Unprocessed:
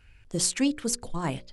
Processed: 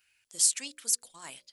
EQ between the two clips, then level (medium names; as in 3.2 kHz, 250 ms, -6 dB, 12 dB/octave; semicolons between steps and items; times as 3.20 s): differentiator; +2.5 dB